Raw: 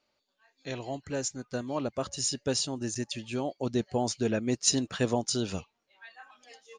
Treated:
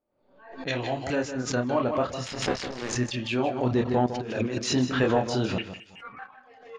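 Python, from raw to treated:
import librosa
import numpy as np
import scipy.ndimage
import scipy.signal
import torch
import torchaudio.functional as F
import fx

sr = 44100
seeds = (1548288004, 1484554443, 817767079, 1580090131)

y = fx.cycle_switch(x, sr, every=2, mode='muted', at=(2.24, 2.92), fade=0.02)
y = fx.chorus_voices(y, sr, voices=4, hz=0.87, base_ms=28, depth_ms=4.9, mix_pct=40)
y = fx.freq_invert(y, sr, carrier_hz=3000, at=(5.58, 6.19))
y = fx.leveller(y, sr, passes=1)
y = fx.env_lowpass(y, sr, base_hz=540.0, full_db=-34.5)
y = fx.tilt_shelf(y, sr, db=-4.5, hz=1100.0)
y = y + 10.0 ** (-21.5 / 20.0) * np.pad(y, (int(217 * sr / 1000.0), 0))[:len(y)]
y = fx.over_compress(y, sr, threshold_db=-37.0, ratio=-0.5, at=(4.06, 4.59))
y = fx.env_lowpass_down(y, sr, base_hz=1800.0, full_db=-31.5)
y = y + 10.0 ** (-10.0 / 20.0) * np.pad(y, (int(156 * sr / 1000.0), 0))[:len(y)]
y = fx.pre_swell(y, sr, db_per_s=86.0)
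y = y * librosa.db_to_amplitude(8.0)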